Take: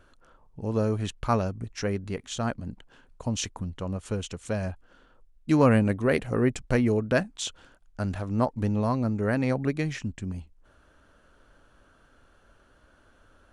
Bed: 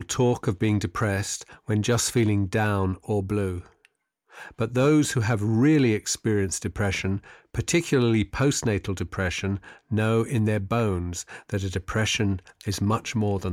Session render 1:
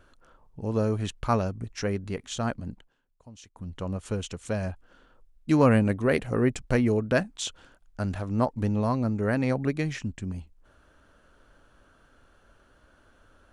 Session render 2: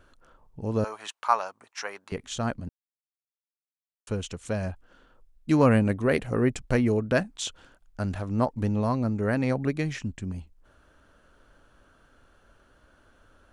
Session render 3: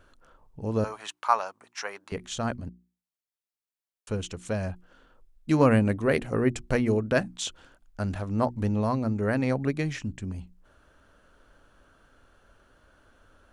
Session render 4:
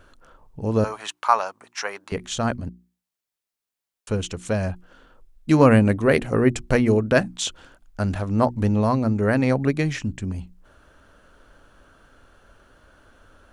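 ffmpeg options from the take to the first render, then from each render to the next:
-filter_complex "[0:a]asplit=3[s0][s1][s2];[s0]atrim=end=2.94,asetpts=PTS-STARTPTS,afade=t=out:st=2.7:d=0.24:silence=0.112202[s3];[s1]atrim=start=2.94:end=3.52,asetpts=PTS-STARTPTS,volume=0.112[s4];[s2]atrim=start=3.52,asetpts=PTS-STARTPTS,afade=t=in:d=0.24:silence=0.112202[s5];[s3][s4][s5]concat=n=3:v=0:a=1"
-filter_complex "[0:a]asettb=1/sr,asplit=3[s0][s1][s2];[s0]atrim=end=0.844[s3];[s1]atrim=start=0.84:end=2.12,asetpts=PTS-STARTPTS,afade=t=in:d=0.004:c=qsin,afade=t=out:st=1.276:d=0.004:c=qsin,highpass=f=930:t=q:w=2.2[s4];[s2]atrim=start=2.116[s5];[s3][s4]acrossfade=d=0.004:c1=hsin:c2=qsin[s6];[s6][s5]acrossfade=d=0.004:c1=qsin:c2=hsin,asplit=3[s7][s8][s9];[s7]atrim=end=2.69,asetpts=PTS-STARTPTS,afade=t=out:st=2.686:d=0.004:c=hsin[s10];[s8]atrim=start=2.69:end=4.07,asetpts=PTS-STARTPTS,volume=0[s11];[s9]atrim=start=4.07,asetpts=PTS-STARTPTS,afade=t=in:d=0.004:c=hsin[s12];[s10][s11][s12]concat=n=3:v=0:a=1"
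-af "bandreject=f=60:t=h:w=6,bandreject=f=120:t=h:w=6,bandreject=f=180:t=h:w=6,bandreject=f=240:t=h:w=6,bandreject=f=300:t=h:w=6,bandreject=f=360:t=h:w=6"
-af "volume=2,alimiter=limit=0.708:level=0:latency=1"

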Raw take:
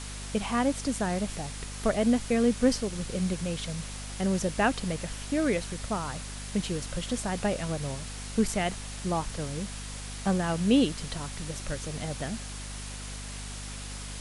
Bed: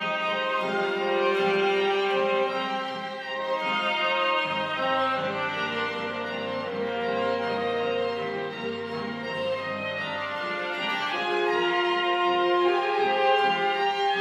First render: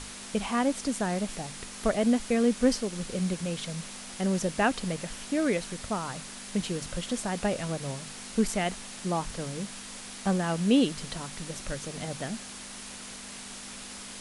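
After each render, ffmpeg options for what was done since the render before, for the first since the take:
-af "bandreject=f=50:t=h:w=6,bandreject=f=100:t=h:w=6,bandreject=f=150:t=h:w=6"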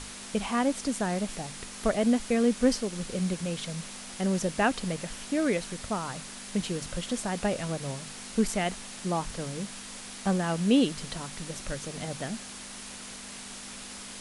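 -af anull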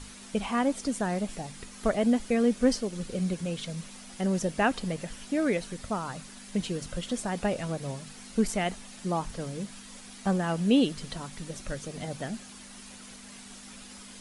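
-af "afftdn=nr=8:nf=-43"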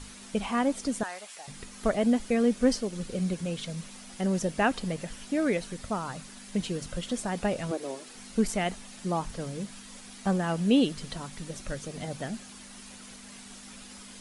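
-filter_complex "[0:a]asettb=1/sr,asplit=3[s0][s1][s2];[s0]atrim=end=1.034[s3];[s1]atrim=start=1.03:end=1.48,asetpts=PTS-STARTPTS,afade=t=in:d=0.004:c=qsin,afade=t=out:st=0.446:d=0.004:c=qsin,highpass=1000[s4];[s2]atrim=start=1.476[s5];[s3][s4]acrossfade=d=0.004:c1=hsin:c2=qsin[s6];[s6][s5]acrossfade=d=0.004:c1=qsin:c2=hsin,asettb=1/sr,asplit=3[s7][s8][s9];[s7]atrim=end=7.714[s10];[s8]atrim=start=7.71:end=8.15,asetpts=PTS-STARTPTS,afade=t=in:d=0.004:c=qsin,afade=t=out:st=0.436:d=0.004:c=qsin,lowshelf=f=230:t=q:w=3:g=-13[s11];[s9]atrim=start=8.146[s12];[s10][s11]acrossfade=d=0.004:c1=hsin:c2=qsin[s13];[s13][s12]acrossfade=d=0.004:c1=qsin:c2=hsin"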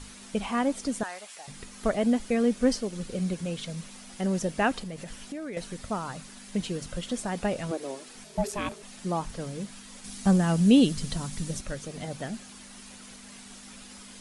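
-filter_complex "[0:a]asettb=1/sr,asplit=3[s0][s1][s2];[s0]atrim=end=4.794[s3];[s1]atrim=start=4.79:end=5.57,asetpts=PTS-STARTPTS,afade=t=in:d=0.004:c=qsin,afade=t=out:st=0.776:d=0.004:c=qsin,acompressor=threshold=0.02:ratio=5:attack=3.2:release=140:knee=1:detection=peak[s4];[s2]atrim=start=5.566[s5];[s3][s4]acrossfade=d=0.004:c1=hsin:c2=qsin[s6];[s6][s5]acrossfade=d=0.004:c1=qsin:c2=hsin,asettb=1/sr,asplit=3[s7][s8][s9];[s7]atrim=end=8.244[s10];[s8]atrim=start=8.24:end=8.83,asetpts=PTS-STARTPTS,afade=t=in:d=0.004:c=qsin,afade=t=out:st=0.586:d=0.004:c=qsin,aeval=exprs='val(0)*sin(2*PI*410*n/s)':c=same[s11];[s9]atrim=start=8.826[s12];[s10][s11]acrossfade=d=0.004:c1=hsin:c2=qsin[s13];[s13][s12]acrossfade=d=0.004:c1=qsin:c2=hsin,asettb=1/sr,asplit=3[s14][s15][s16];[s14]atrim=end=10.044[s17];[s15]atrim=start=10.04:end=11.61,asetpts=PTS-STARTPTS,afade=t=in:d=0.004:c=qsin,afade=t=out:st=1.566:d=0.004:c=qsin,bass=f=250:g=9,treble=f=4000:g=7[s18];[s16]atrim=start=11.606[s19];[s17][s18]acrossfade=d=0.004:c1=hsin:c2=qsin[s20];[s20][s19]acrossfade=d=0.004:c1=qsin:c2=hsin"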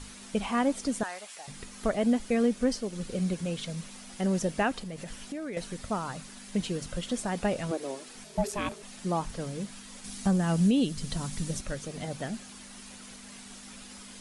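-af "alimiter=limit=0.158:level=0:latency=1:release=422"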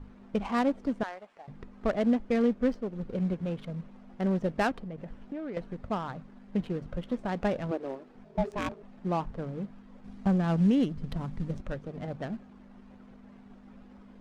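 -af "adynamicsmooth=sensitivity=3.5:basefreq=760"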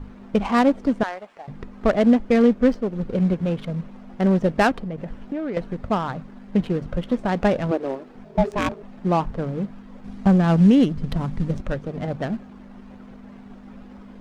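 -af "volume=2.99"

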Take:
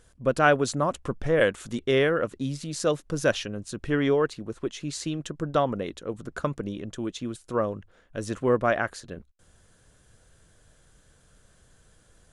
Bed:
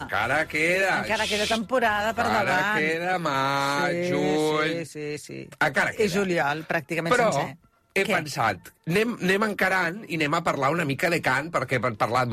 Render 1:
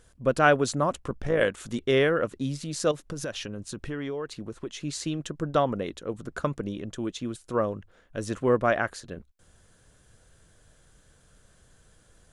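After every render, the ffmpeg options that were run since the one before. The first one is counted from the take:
-filter_complex "[0:a]asplit=3[s0][s1][s2];[s0]afade=t=out:st=0.99:d=0.02[s3];[s1]tremolo=f=56:d=0.519,afade=t=in:st=0.99:d=0.02,afade=t=out:st=1.56:d=0.02[s4];[s2]afade=t=in:st=1.56:d=0.02[s5];[s3][s4][s5]amix=inputs=3:normalize=0,asettb=1/sr,asplit=3[s6][s7][s8];[s6]atrim=end=2.914[s9];[s7]atrim=start=2.91:end=4.82,asetpts=PTS-STARTPTS,afade=t=in:d=0.004:c=qsin,afade=t=out:st=1.906:d=0.004:c=qsin,acompressor=threshold=0.0316:ratio=5:attack=3.2:release=140:knee=1:detection=peak[s10];[s8]atrim=start=4.816[s11];[s9][s10]acrossfade=d=0.004:c1=hsin:c2=qsin[s12];[s12][s11]acrossfade=d=0.004:c1=qsin:c2=hsin"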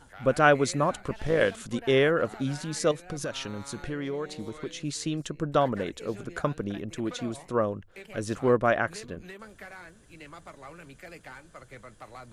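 -filter_complex "[1:a]volume=0.075[s0];[0:a][s0]amix=inputs=2:normalize=0"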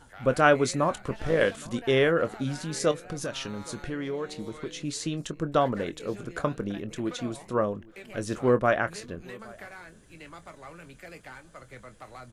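-filter_complex "[0:a]asplit=2[s0][s1];[s1]adelay=24,volume=0.237[s2];[s0][s2]amix=inputs=2:normalize=0,asplit=2[s3][s4];[s4]adelay=816.3,volume=0.0708,highshelf=f=4000:g=-18.4[s5];[s3][s5]amix=inputs=2:normalize=0"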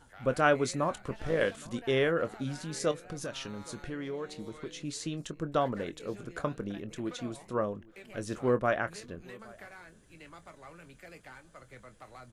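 -af "volume=0.562"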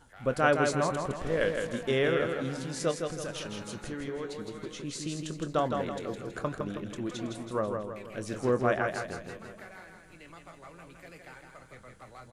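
-af "aecho=1:1:162|324|486|648|810|972:0.562|0.259|0.119|0.0547|0.0252|0.0116"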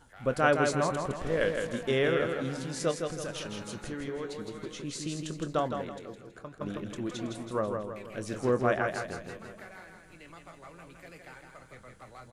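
-filter_complex "[0:a]asplit=2[s0][s1];[s0]atrim=end=6.61,asetpts=PTS-STARTPTS,afade=t=out:st=5.5:d=1.11:c=qua:silence=0.251189[s2];[s1]atrim=start=6.61,asetpts=PTS-STARTPTS,afade=t=in:d=0.004:c=hsin:silence=0.251189[s3];[s2][s3]concat=n=2:v=0:a=1"

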